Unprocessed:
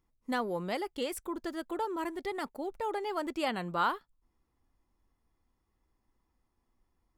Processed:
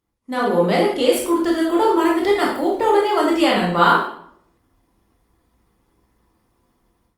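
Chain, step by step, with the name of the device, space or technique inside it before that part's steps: peaking EQ 3.3 kHz +2.5 dB 0.38 oct; far-field microphone of a smart speaker (reverberation RT60 0.65 s, pre-delay 16 ms, DRR -3 dB; high-pass 98 Hz 6 dB/octave; level rider gain up to 12 dB; trim +1 dB; Opus 32 kbps 48 kHz)

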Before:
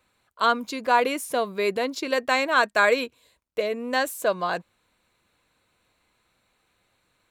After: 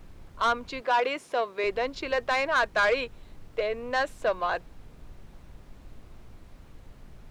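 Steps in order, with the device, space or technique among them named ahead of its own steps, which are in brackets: aircraft cabin announcement (band-pass 410–3500 Hz; saturation -17 dBFS, distortion -12 dB; brown noise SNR 15 dB); 0.81–1.64 s: high-pass 250 Hz 12 dB/octave

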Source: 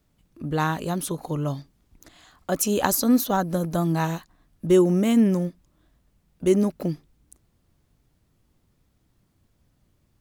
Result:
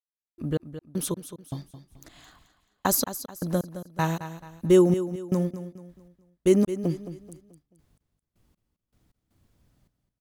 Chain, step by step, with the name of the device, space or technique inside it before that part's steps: trance gate with a delay (trance gate "..x..x..x.xxx" 79 bpm -60 dB; feedback delay 217 ms, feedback 38%, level -12 dB)

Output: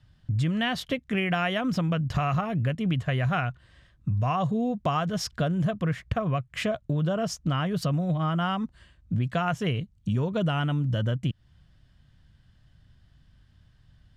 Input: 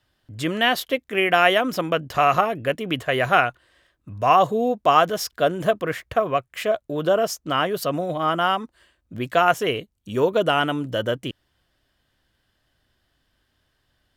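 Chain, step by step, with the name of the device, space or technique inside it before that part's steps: jukebox (low-pass 7.8 kHz 12 dB/octave; resonant low shelf 240 Hz +14 dB, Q 1.5; compression 5:1, threshold -24 dBFS, peak gain reduction 12.5 dB)

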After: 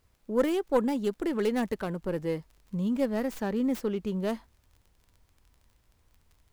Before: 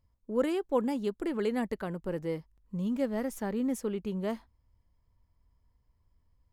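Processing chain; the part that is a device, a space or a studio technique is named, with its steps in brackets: record under a worn stylus (tracing distortion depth 0.17 ms; crackle 27 per s -50 dBFS; pink noise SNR 42 dB); trim +3 dB

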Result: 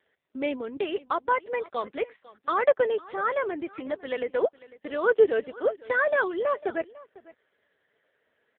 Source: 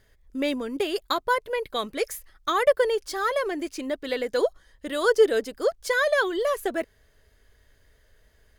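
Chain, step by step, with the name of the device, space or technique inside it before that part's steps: satellite phone (band-pass 300–3200 Hz; delay 500 ms -20 dB; AMR-NB 5.9 kbps 8 kHz)

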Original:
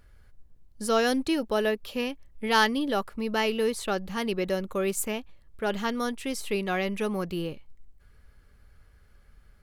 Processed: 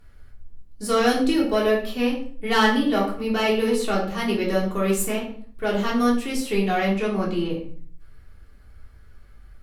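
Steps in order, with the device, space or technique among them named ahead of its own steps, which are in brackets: 6.90–7.50 s: low-pass 7.5 kHz 12 dB/octave; rockabilly slapback (valve stage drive 14 dB, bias 0.35; tape echo 94 ms, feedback 21%, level -13.5 dB, low-pass 4.6 kHz); simulated room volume 360 m³, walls furnished, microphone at 3.4 m

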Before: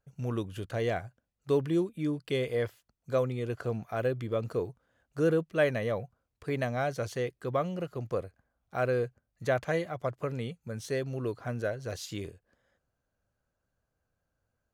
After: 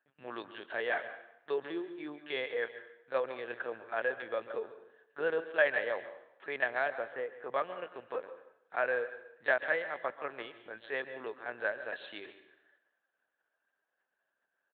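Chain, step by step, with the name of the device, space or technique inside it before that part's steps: 6.90–7.51 s: low-pass 1.5 kHz 12 dB/octave; delay 144 ms -16 dB; talking toy (LPC vocoder at 8 kHz pitch kept; high-pass 610 Hz 12 dB/octave; peaking EQ 1.7 kHz +11 dB 0.26 oct); plate-style reverb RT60 0.79 s, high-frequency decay 0.9×, pre-delay 115 ms, DRR 13.5 dB

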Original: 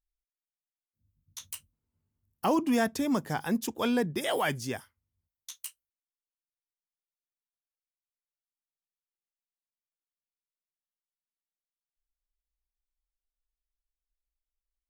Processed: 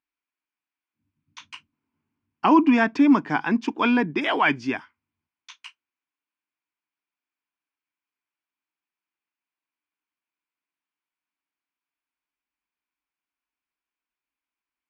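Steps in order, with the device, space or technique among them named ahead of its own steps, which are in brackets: kitchen radio (cabinet simulation 190–4400 Hz, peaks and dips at 290 Hz +10 dB, 530 Hz -10 dB, 1 kHz +8 dB, 1.5 kHz +5 dB, 2.4 kHz +9 dB, 3.9 kHz -7 dB); trim +5.5 dB

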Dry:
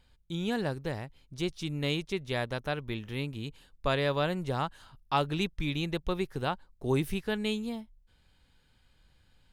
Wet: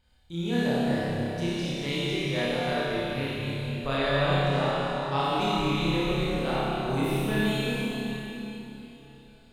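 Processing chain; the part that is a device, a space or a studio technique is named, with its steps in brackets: tunnel (flutter echo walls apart 5 m, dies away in 0.68 s; reverberation RT60 3.6 s, pre-delay 28 ms, DRR -6.5 dB); 3.97–5.24 s: low-pass 10 kHz 12 dB/octave; trim -5 dB

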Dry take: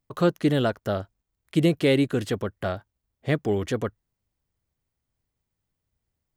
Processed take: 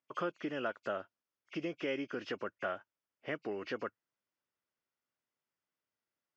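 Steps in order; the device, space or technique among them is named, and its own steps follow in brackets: hearing aid with frequency lowering (knee-point frequency compression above 2.1 kHz 1.5:1; compression 4:1, threshold -26 dBFS, peak gain reduction 9 dB; cabinet simulation 380–5200 Hz, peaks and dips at 440 Hz -4 dB, 760 Hz -5 dB, 1.4 kHz +4 dB, 4 kHz -9 dB); trim -3.5 dB

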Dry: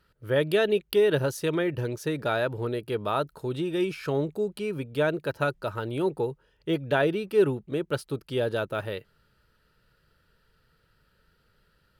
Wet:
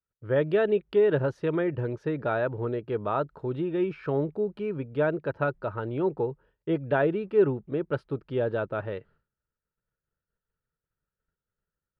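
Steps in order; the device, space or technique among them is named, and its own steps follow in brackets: hearing-loss simulation (low-pass 1.7 kHz 12 dB/octave; expander -52 dBFS)

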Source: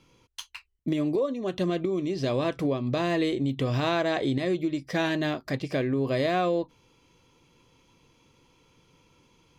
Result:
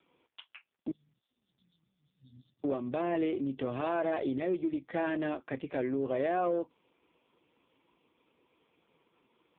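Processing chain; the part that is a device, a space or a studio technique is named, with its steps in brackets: 0.91–2.64 s: Chebyshev band-stop 120–4400 Hz, order 5; telephone (band-pass 250–3300 Hz; saturation -18 dBFS, distortion -18 dB; trim -2 dB; AMR-NB 5.15 kbps 8 kHz)

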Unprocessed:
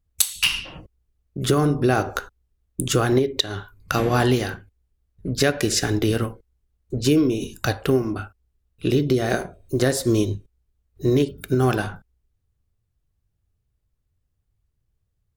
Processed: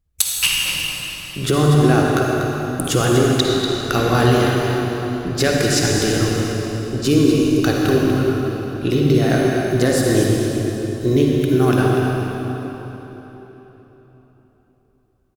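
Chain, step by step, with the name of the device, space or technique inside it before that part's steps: cave (delay 242 ms -9 dB; reverberation RT60 3.9 s, pre-delay 46 ms, DRR -1.5 dB); trim +1 dB

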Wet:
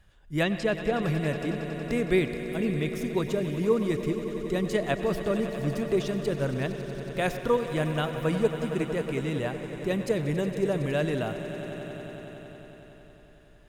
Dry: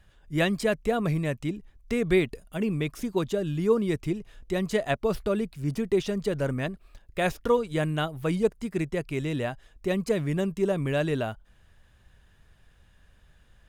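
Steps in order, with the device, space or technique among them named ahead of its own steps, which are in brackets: 0.43–1.03 s: low-pass 5.8 kHz 12 dB/octave; echo with a slow build-up 92 ms, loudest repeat 5, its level -15 dB; filtered reverb send (on a send at -12.5 dB: high-pass 590 Hz + low-pass 4.1 kHz + reverberation RT60 0.55 s, pre-delay 94 ms); on the sum: trim -1.5 dB

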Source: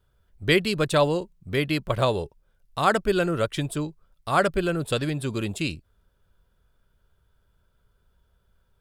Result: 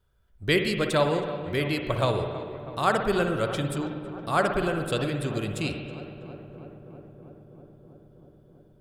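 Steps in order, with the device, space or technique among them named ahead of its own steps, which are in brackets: dub delay into a spring reverb (filtered feedback delay 323 ms, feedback 81%, low-pass 1.9 kHz, level -14 dB; spring tank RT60 1.5 s, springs 56 ms, chirp 70 ms, DRR 5 dB); trim -3 dB

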